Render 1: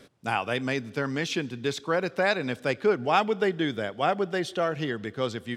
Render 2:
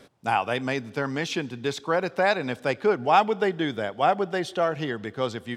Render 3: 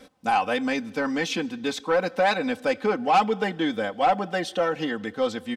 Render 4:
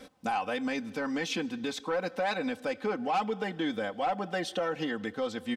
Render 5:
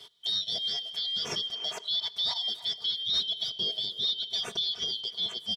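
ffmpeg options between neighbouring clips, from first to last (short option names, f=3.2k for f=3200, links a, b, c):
-af "equalizer=f=830:t=o:w=0.83:g=6"
-af "aecho=1:1:3.9:0.86,asoftclip=type=tanh:threshold=-13dB"
-af "alimiter=limit=-23dB:level=0:latency=1:release=334"
-filter_complex "[0:a]afftfilt=real='real(if(lt(b,272),68*(eq(floor(b/68),0)*2+eq(floor(b/68),1)*3+eq(floor(b/68),2)*0+eq(floor(b/68),3)*1)+mod(b,68),b),0)':imag='imag(if(lt(b,272),68*(eq(floor(b/68),0)*2+eq(floor(b/68),1)*3+eq(floor(b/68),2)*0+eq(floor(b/68),3)*1)+mod(b,68),b),0)':win_size=2048:overlap=0.75,asplit=2[a][b];[b]adelay=300,highpass=300,lowpass=3.4k,asoftclip=type=hard:threshold=-28dB,volume=-14dB[c];[a][c]amix=inputs=2:normalize=0"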